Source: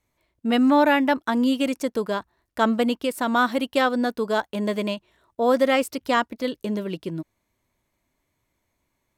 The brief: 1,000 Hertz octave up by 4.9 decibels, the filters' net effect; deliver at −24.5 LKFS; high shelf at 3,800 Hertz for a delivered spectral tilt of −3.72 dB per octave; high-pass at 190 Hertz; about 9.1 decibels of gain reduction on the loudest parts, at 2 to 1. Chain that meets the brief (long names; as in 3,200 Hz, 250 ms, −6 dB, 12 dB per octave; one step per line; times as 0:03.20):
high-pass filter 190 Hz
parametric band 1,000 Hz +5.5 dB
high-shelf EQ 3,800 Hz +8 dB
downward compressor 2 to 1, threshold −28 dBFS
level +4 dB